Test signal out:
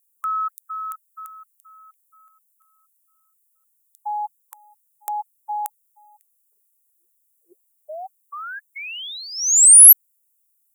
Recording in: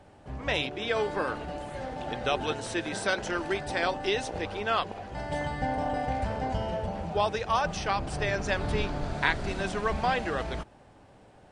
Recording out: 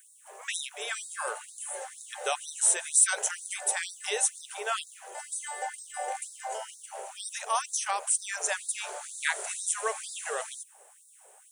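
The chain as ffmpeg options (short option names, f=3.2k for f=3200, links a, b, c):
-af "aexciter=amount=15.2:drive=7.5:freq=7.1k,afftfilt=real='re*gte(b*sr/1024,350*pow(3700/350,0.5+0.5*sin(2*PI*2.1*pts/sr)))':imag='im*gte(b*sr/1024,350*pow(3700/350,0.5+0.5*sin(2*PI*2.1*pts/sr)))':win_size=1024:overlap=0.75,volume=-1.5dB"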